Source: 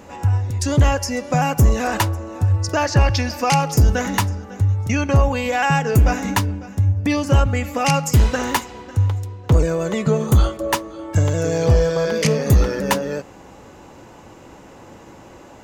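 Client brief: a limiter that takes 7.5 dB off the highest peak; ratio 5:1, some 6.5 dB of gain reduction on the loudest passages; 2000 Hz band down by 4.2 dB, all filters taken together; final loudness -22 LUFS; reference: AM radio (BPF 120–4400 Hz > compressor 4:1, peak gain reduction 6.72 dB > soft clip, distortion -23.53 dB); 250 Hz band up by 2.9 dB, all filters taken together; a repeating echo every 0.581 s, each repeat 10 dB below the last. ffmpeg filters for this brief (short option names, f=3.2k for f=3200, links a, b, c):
-af "equalizer=f=250:t=o:g=4.5,equalizer=f=2k:t=o:g=-5.5,acompressor=threshold=-16dB:ratio=5,alimiter=limit=-14.5dB:level=0:latency=1,highpass=120,lowpass=4.4k,aecho=1:1:581|1162|1743|2324:0.316|0.101|0.0324|0.0104,acompressor=threshold=-25dB:ratio=4,asoftclip=threshold=-19dB,volume=8dB"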